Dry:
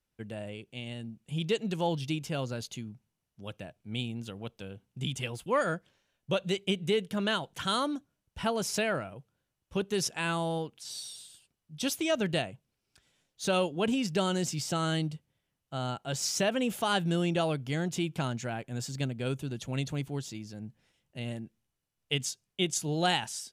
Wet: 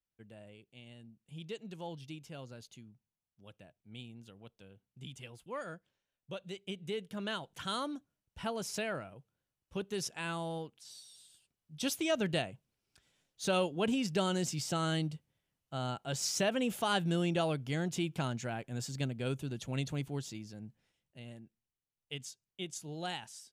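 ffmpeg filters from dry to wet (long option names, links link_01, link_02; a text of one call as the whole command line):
ffmpeg -i in.wav -af "volume=4dB,afade=type=in:start_time=6.52:duration=1.03:silence=0.473151,afade=type=out:start_time=10.65:duration=0.41:silence=0.446684,afade=type=in:start_time=11.06:duration=0.81:silence=0.281838,afade=type=out:start_time=20.3:duration=0.94:silence=0.354813" out.wav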